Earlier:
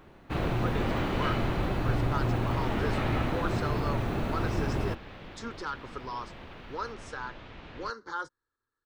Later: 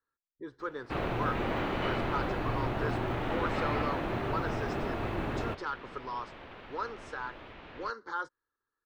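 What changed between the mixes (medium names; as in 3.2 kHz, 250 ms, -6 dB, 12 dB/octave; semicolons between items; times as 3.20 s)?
first sound: entry +0.60 s; master: add tone controls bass -7 dB, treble -8 dB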